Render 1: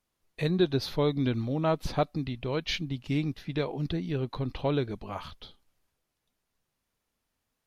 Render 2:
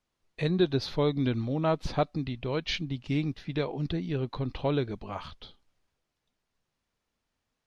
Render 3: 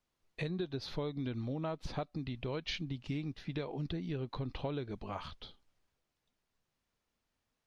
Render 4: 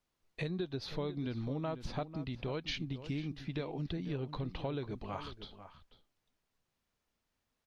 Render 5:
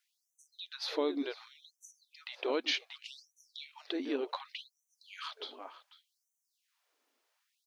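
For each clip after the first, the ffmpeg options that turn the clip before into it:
-af "lowpass=6.9k"
-af "acompressor=threshold=-32dB:ratio=6,volume=-2.5dB"
-filter_complex "[0:a]asplit=2[a][b];[b]adelay=495.6,volume=-12dB,highshelf=f=4k:g=-11.2[c];[a][c]amix=inputs=2:normalize=0"
-af "afftfilt=real='re*gte(b*sr/1024,220*pow(5900/220,0.5+0.5*sin(2*PI*0.67*pts/sr)))':imag='im*gte(b*sr/1024,220*pow(5900/220,0.5+0.5*sin(2*PI*0.67*pts/sr)))':win_size=1024:overlap=0.75,volume=7dB"

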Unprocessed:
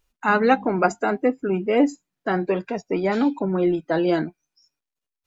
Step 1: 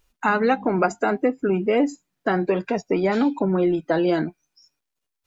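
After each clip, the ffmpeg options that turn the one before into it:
-af "acompressor=threshold=-23dB:ratio=3,volume=5dB"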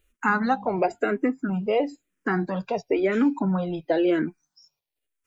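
-filter_complex "[0:a]asplit=2[a][b];[b]afreqshift=-0.99[c];[a][c]amix=inputs=2:normalize=1"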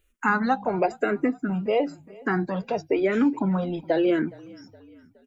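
-filter_complex "[0:a]asplit=4[a][b][c][d];[b]adelay=417,afreqshift=-30,volume=-23dB[e];[c]adelay=834,afreqshift=-60,volume=-28.7dB[f];[d]adelay=1251,afreqshift=-90,volume=-34.4dB[g];[a][e][f][g]amix=inputs=4:normalize=0"

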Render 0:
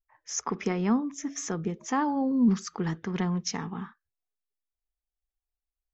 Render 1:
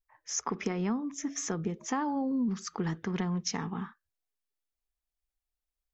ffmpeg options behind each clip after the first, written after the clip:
-af "acompressor=threshold=-27dB:ratio=10"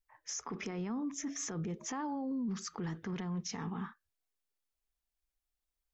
-af "alimiter=level_in=7dB:limit=-24dB:level=0:latency=1:release=25,volume=-7dB"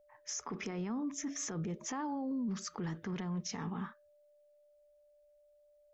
-af "aeval=exprs='val(0)+0.000631*sin(2*PI*590*n/s)':c=same"

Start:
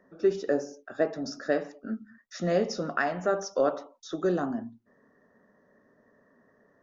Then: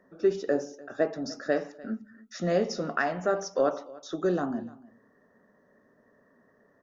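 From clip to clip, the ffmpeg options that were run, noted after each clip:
-af "aecho=1:1:297:0.0891"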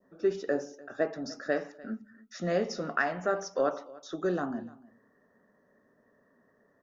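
-af "adynamicequalizer=threshold=0.00794:dfrequency=1700:dqfactor=0.92:tfrequency=1700:tqfactor=0.92:attack=5:release=100:ratio=0.375:range=2:mode=boostabove:tftype=bell,volume=-3.5dB"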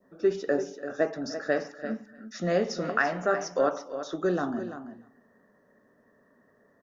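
-af "aecho=1:1:339:0.282,volume=3dB"

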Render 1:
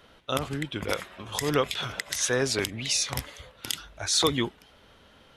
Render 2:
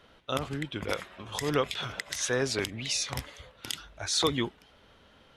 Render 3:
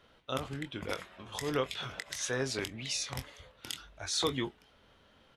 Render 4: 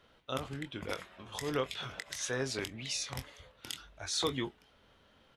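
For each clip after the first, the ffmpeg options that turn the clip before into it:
-af "highshelf=f=9.5k:g=-8,volume=-2.5dB"
-filter_complex "[0:a]asplit=2[a][b];[b]adelay=23,volume=-10dB[c];[a][c]amix=inputs=2:normalize=0,volume=-5dB"
-af "asoftclip=type=hard:threshold=-19dB,volume=-1.5dB"

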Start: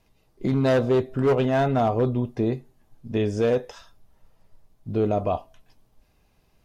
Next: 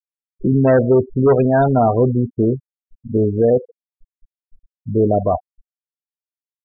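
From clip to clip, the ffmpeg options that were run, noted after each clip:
-af "afftfilt=real='re*gte(hypot(re,im),0.0891)':imag='im*gte(hypot(re,im),0.0891)':win_size=1024:overlap=0.75,volume=7.5dB"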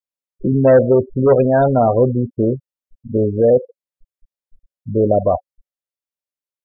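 -af "equalizer=f=550:t=o:w=0.21:g=11,volume=-1dB"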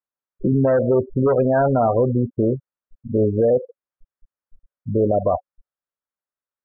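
-af "lowpass=f=1.4k:t=q:w=1.9,alimiter=limit=-10dB:level=0:latency=1:release=118"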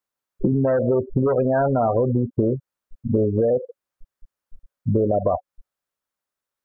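-af "acompressor=threshold=-24dB:ratio=6,volume=7dB"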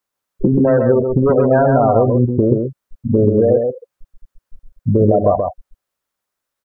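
-af "aecho=1:1:131:0.596,volume=5.5dB"

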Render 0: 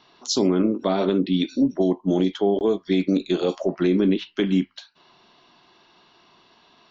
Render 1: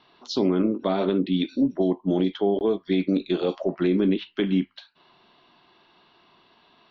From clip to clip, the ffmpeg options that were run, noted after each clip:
-af "lowpass=f=4.3k:w=0.5412,lowpass=f=4.3k:w=1.3066,volume=-2dB"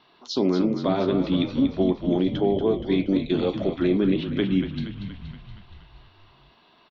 -filter_complex "[0:a]asplit=9[a][b][c][d][e][f][g][h][i];[b]adelay=236,afreqshift=-41,volume=-9dB[j];[c]adelay=472,afreqshift=-82,volume=-12.9dB[k];[d]adelay=708,afreqshift=-123,volume=-16.8dB[l];[e]adelay=944,afreqshift=-164,volume=-20.6dB[m];[f]adelay=1180,afreqshift=-205,volume=-24.5dB[n];[g]adelay=1416,afreqshift=-246,volume=-28.4dB[o];[h]adelay=1652,afreqshift=-287,volume=-32.3dB[p];[i]adelay=1888,afreqshift=-328,volume=-36.1dB[q];[a][j][k][l][m][n][o][p][q]amix=inputs=9:normalize=0"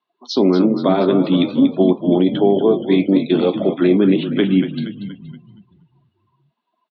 -af "afftdn=nr=30:nf=-45,highpass=f=160:w=0.5412,highpass=f=160:w=1.3066,highshelf=f=5.4k:g=-5.5,volume=8dB"

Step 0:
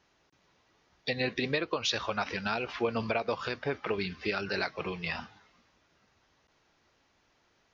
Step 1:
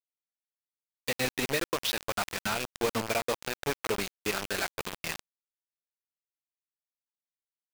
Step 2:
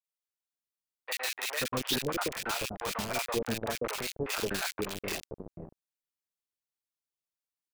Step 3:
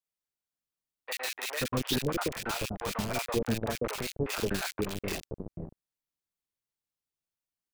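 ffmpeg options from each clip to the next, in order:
-af "lowpass=5k,bandreject=f=187.3:t=h:w=4,bandreject=f=374.6:t=h:w=4,bandreject=f=561.9:t=h:w=4,bandreject=f=749.2:t=h:w=4,bandreject=f=936.5:t=h:w=4,bandreject=f=1.1238k:t=h:w=4,bandreject=f=1.3111k:t=h:w=4,bandreject=f=1.4984k:t=h:w=4,bandreject=f=1.6857k:t=h:w=4,bandreject=f=1.873k:t=h:w=4,bandreject=f=2.0603k:t=h:w=4,bandreject=f=2.2476k:t=h:w=4,bandreject=f=2.4349k:t=h:w=4,bandreject=f=2.6222k:t=h:w=4,bandreject=f=2.8095k:t=h:w=4,bandreject=f=2.9968k:t=h:w=4,bandreject=f=3.1841k:t=h:w=4,bandreject=f=3.3714k:t=h:w=4,bandreject=f=3.5587k:t=h:w=4,bandreject=f=3.746k:t=h:w=4,bandreject=f=3.9333k:t=h:w=4,bandreject=f=4.1206k:t=h:w=4,bandreject=f=4.3079k:t=h:w=4,bandreject=f=4.4952k:t=h:w=4,bandreject=f=4.6825k:t=h:w=4,bandreject=f=4.8698k:t=h:w=4,bandreject=f=5.0571k:t=h:w=4,bandreject=f=5.2444k:t=h:w=4,acrusher=bits=4:mix=0:aa=0.000001"
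-filter_complex "[0:a]acrossover=split=610|1900[a][b][c];[c]adelay=40[d];[a]adelay=530[e];[e][b][d]amix=inputs=3:normalize=0"
-af "lowshelf=f=320:g=9,volume=-1.5dB"

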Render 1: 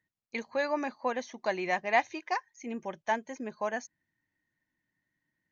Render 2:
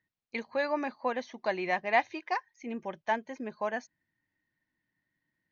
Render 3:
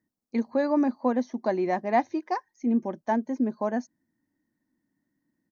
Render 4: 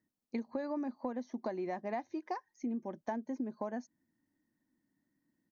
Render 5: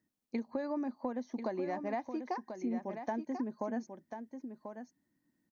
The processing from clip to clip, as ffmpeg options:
-af "lowpass=f=5.1k:w=0.5412,lowpass=f=5.1k:w=1.3066"
-af "firequalizer=gain_entry='entry(140,0);entry(240,14);entry(420,4);entry(2700,-14);entry(5300,0)':delay=0.05:min_phase=1,volume=2dB"
-af "acompressor=threshold=-31dB:ratio=10,volume=-3dB"
-af "aecho=1:1:1040:0.398,volume=1dB"

